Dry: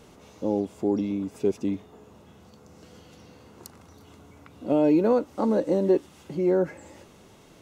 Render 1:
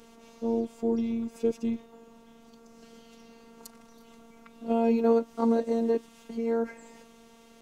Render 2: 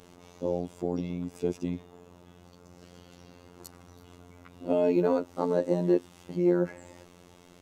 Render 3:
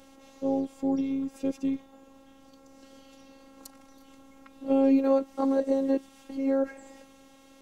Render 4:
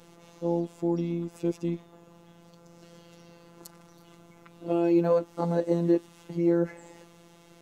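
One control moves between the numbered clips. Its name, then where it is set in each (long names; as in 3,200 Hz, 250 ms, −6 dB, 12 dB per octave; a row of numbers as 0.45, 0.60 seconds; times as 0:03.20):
phases set to zero, frequency: 230, 88, 270, 170 Hertz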